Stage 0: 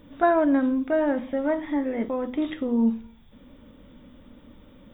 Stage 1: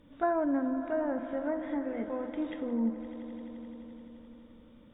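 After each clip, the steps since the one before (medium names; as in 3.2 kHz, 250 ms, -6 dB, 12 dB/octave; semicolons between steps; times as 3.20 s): echo with a slow build-up 86 ms, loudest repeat 5, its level -17.5 dB; low-pass that closes with the level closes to 1.7 kHz, closed at -19 dBFS; trim -8.5 dB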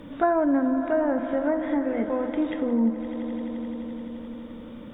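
three bands compressed up and down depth 40%; trim +8 dB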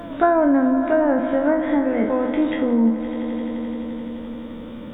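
spectral sustain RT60 0.40 s; pre-echo 265 ms -21.5 dB; trim +5 dB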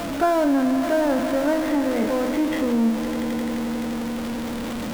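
jump at every zero crossing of -20 dBFS; trim -5 dB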